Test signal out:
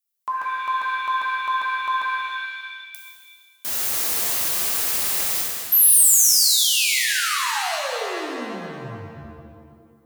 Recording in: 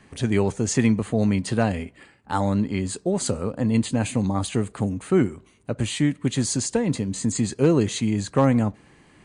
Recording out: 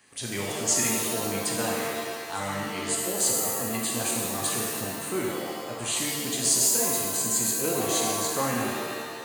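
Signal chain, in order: RIAA curve recording; shimmer reverb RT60 1.6 s, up +7 st, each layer -2 dB, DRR -2.5 dB; gain -8.5 dB

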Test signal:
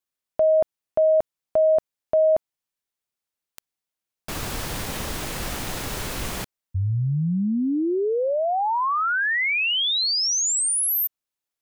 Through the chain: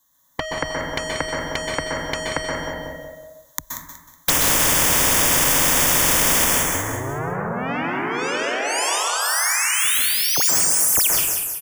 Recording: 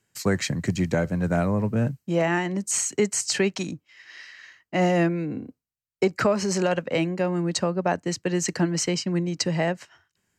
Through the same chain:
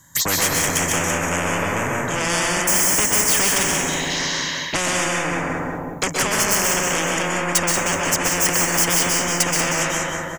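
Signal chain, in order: ripple EQ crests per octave 1.1, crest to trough 12 dB; in parallel at 0 dB: limiter -20 dBFS; on the sum: AGC gain up to 7.5 dB; soft clip -17 dBFS; envelope phaser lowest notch 430 Hz, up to 4000 Hz, full sweep at -22.5 dBFS; feedback echo 0.185 s, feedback 33%, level -9.5 dB; plate-style reverb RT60 0.9 s, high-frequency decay 0.45×, pre-delay 0.115 s, DRR -1.5 dB; spectral compressor 4:1

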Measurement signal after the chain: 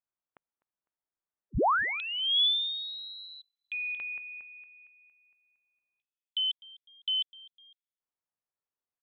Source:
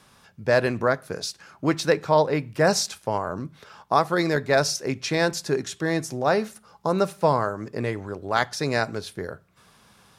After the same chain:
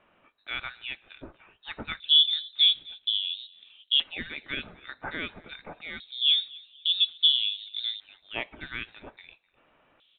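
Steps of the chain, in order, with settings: frequency-shifting echo 0.252 s, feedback 37%, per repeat -77 Hz, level -23 dB; LFO band-pass square 0.25 Hz 590–3100 Hz; inverted band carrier 4000 Hz; gain +1.5 dB

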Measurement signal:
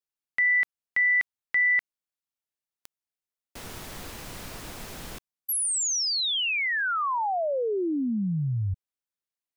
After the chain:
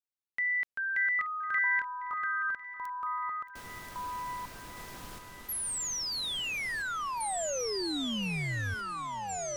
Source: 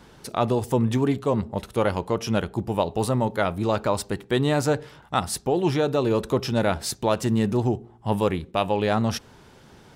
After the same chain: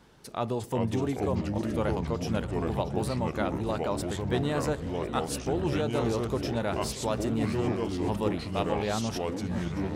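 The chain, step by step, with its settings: echoes that change speed 0.29 s, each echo -4 st, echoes 3; on a send: swung echo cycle 1.051 s, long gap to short 1.5:1, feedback 60%, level -17.5 dB; on the sum: gain -8 dB

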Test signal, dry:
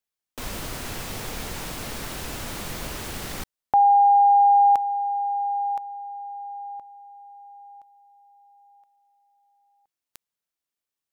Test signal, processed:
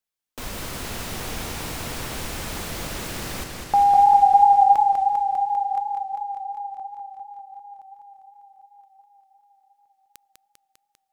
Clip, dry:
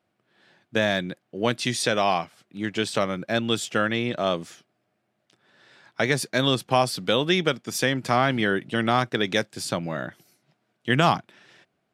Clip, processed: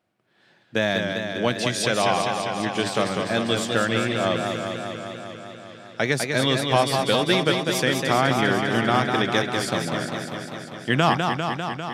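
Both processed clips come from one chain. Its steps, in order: warbling echo 0.199 s, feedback 75%, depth 91 cents, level -5 dB

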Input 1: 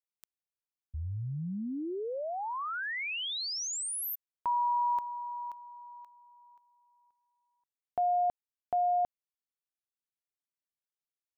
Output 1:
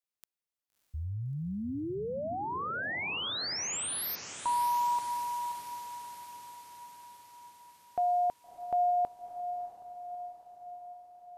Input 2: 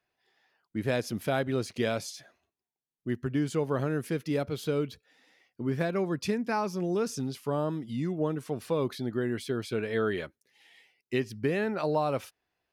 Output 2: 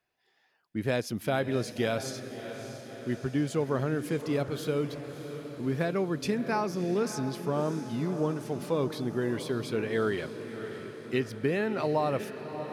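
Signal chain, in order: diffused feedback echo 0.63 s, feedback 62%, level -10.5 dB

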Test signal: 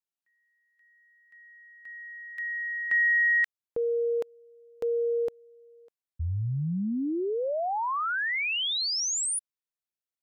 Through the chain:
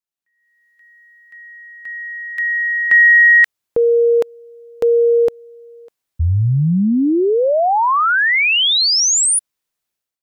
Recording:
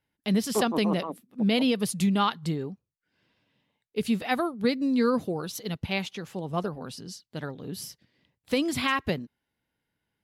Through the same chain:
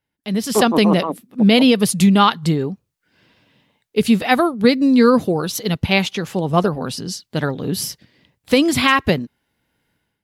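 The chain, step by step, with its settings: AGC gain up to 14.5 dB

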